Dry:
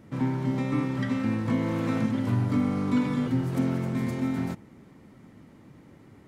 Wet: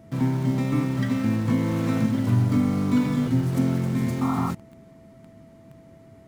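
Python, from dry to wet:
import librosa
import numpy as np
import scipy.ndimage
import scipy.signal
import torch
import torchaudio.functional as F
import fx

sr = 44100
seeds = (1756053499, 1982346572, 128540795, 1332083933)

p1 = fx.spec_paint(x, sr, seeds[0], shape='noise', start_s=4.21, length_s=0.3, low_hz=700.0, high_hz=1400.0, level_db=-32.0)
p2 = p1 + 10.0 ** (-50.0 / 20.0) * np.sin(2.0 * np.pi * 660.0 * np.arange(len(p1)) / sr)
p3 = fx.bass_treble(p2, sr, bass_db=5, treble_db=5)
p4 = fx.quant_dither(p3, sr, seeds[1], bits=6, dither='none')
p5 = p3 + F.gain(torch.from_numpy(p4), -9.0).numpy()
y = F.gain(torch.from_numpy(p5), -2.0).numpy()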